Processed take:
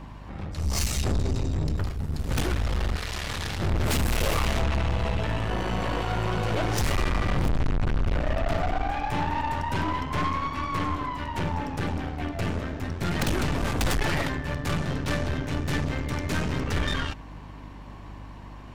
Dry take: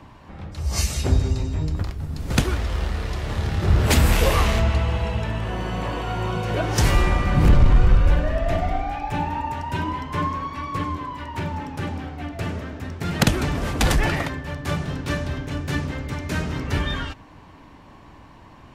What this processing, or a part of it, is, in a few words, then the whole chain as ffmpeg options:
valve amplifier with mains hum: -filter_complex "[0:a]aeval=exprs='(tanh(22.4*val(0)+0.65)-tanh(0.65))/22.4':c=same,aeval=exprs='val(0)+0.00501*(sin(2*PI*50*n/s)+sin(2*PI*2*50*n/s)/2+sin(2*PI*3*50*n/s)/3+sin(2*PI*4*50*n/s)/4+sin(2*PI*5*50*n/s)/5)':c=same,asettb=1/sr,asplit=3[a][b][c];[a]atrim=end=2.964[d];[b]atrim=start=2.96:end=3.6,asetpts=PTS-STARTPTS,afade=t=in:d=0.004:c=qsin,afade=t=out:st=0.636:d=0.004:c=qsin,tiltshelf=f=1.2k:g=-7[e];[c]atrim=start=3.596[f];[d][e]acrossfade=d=0.004:c1=hsin:c2=qsin[g];[g][f]acrossfade=d=0.004:c1=qsin:c2=hsin,volume=4dB"

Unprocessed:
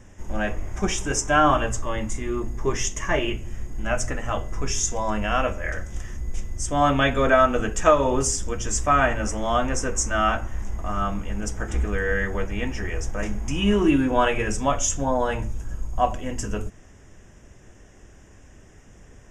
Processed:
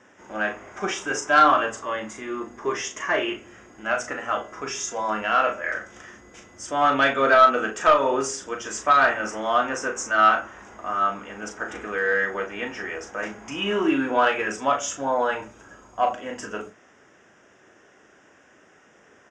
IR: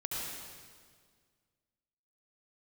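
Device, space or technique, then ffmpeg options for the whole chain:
intercom: -filter_complex "[0:a]highpass=330,lowpass=4.9k,equalizer=f=1.4k:t=o:w=0.48:g=6.5,asoftclip=type=tanh:threshold=-8.5dB,asplit=2[a][b];[b]adelay=37,volume=-7dB[c];[a][c]amix=inputs=2:normalize=0"

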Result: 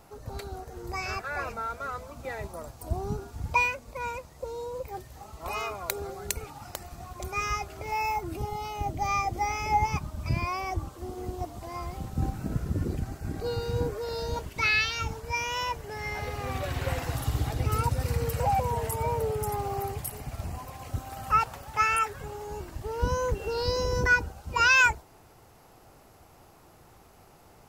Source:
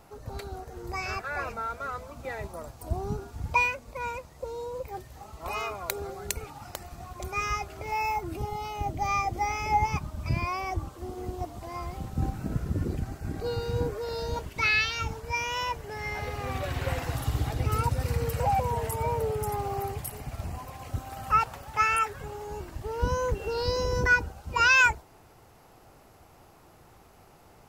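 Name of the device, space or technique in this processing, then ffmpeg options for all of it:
exciter from parts: -filter_complex "[0:a]asplit=2[a][b];[b]highpass=3.3k,asoftclip=type=tanh:threshold=-23dB,volume=-12dB[c];[a][c]amix=inputs=2:normalize=0"

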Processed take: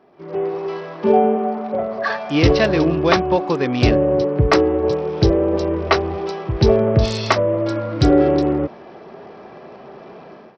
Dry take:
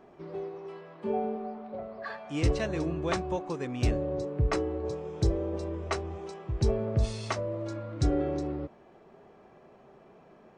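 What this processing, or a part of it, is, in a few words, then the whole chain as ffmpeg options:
Bluetooth headset: -af "highpass=f=160:p=1,dynaudnorm=f=130:g=5:m=16dB,aresample=16000,aresample=44100,volume=1.5dB" -ar 44100 -c:a sbc -b:a 64k

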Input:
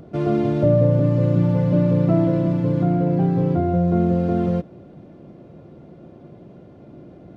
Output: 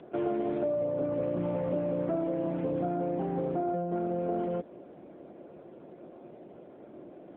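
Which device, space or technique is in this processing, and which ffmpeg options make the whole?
voicemail: -filter_complex "[0:a]asplit=3[a][b][c];[a]afade=t=out:st=3.49:d=0.02[d];[b]bandreject=f=430:w=12,afade=t=in:st=3.49:d=0.02,afade=t=out:st=3.99:d=0.02[e];[c]afade=t=in:st=3.99:d=0.02[f];[d][e][f]amix=inputs=3:normalize=0,highpass=360,lowpass=3k,acompressor=threshold=-27dB:ratio=6" -ar 8000 -c:a libopencore_amrnb -b:a 7950

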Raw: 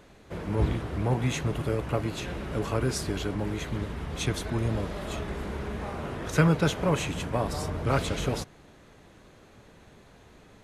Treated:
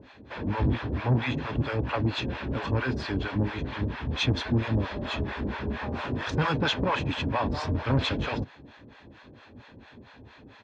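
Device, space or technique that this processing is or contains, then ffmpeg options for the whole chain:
guitar amplifier with harmonic tremolo: -filter_complex "[0:a]asettb=1/sr,asplit=3[a][b][c];[a]atrim=end=5.904[d];[b]atrim=start=5.9:end=6.58,asetpts=PTS-STARTPTS,afade=t=in:d=0.004:c=qsin,afade=t=out:st=0.676:d=0.004:c=qsin,aemphasis=mode=production:type=50kf[e];[c]atrim=start=6.576[f];[d][e]acrossfade=d=0.004:c1=hsin:c2=qsin[g];[g][f]acrossfade=d=0.004:c1=qsin:c2=hsin,acrossover=split=600[h][i];[h]aeval=exprs='val(0)*(1-1/2+1/2*cos(2*PI*4.4*n/s))':c=same[j];[i]aeval=exprs='val(0)*(1-1/2-1/2*cos(2*PI*4.4*n/s))':c=same[k];[j][k]amix=inputs=2:normalize=0,asoftclip=type=tanh:threshold=-25.5dB,highpass=76,equalizer=f=170:t=q:w=4:g=-9,equalizer=f=260:t=q:w=4:g=6,equalizer=f=710:t=q:w=4:g=-6,lowpass=f=4.4k:w=0.5412,lowpass=f=4.4k:w=1.3066,aecho=1:1:1.2:0.33,volume=9dB"

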